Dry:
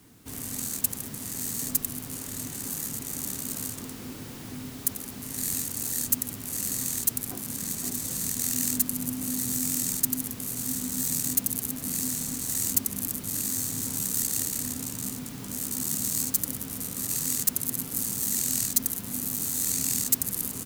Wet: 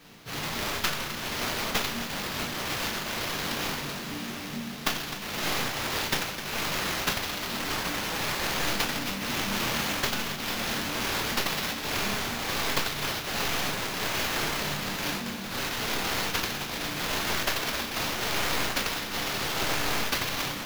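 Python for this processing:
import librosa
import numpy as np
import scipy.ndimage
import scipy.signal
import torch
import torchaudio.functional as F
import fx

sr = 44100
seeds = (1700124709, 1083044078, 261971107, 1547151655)

p1 = fx.tracing_dist(x, sr, depth_ms=0.04)
p2 = fx.high_shelf(p1, sr, hz=5200.0, db=6.5)
p3 = fx.rider(p2, sr, range_db=10, speed_s=0.5)
p4 = p2 + (p3 * 10.0 ** (0.0 / 20.0))
p5 = fx.pitch_keep_formants(p4, sr, semitones=8.0)
p6 = fx.resonator_bank(p5, sr, root=43, chord='minor', decay_s=0.41)
p7 = fx.sample_hold(p6, sr, seeds[0], rate_hz=8800.0, jitter_pct=20)
p8 = fx.doubler(p7, sr, ms=34.0, db=-11.5)
p9 = p8 + 10.0 ** (-11.5 / 20.0) * np.pad(p8, (int(257 * sr / 1000.0), 0))[:len(p8)]
y = p9 * 10.0 ** (5.5 / 20.0)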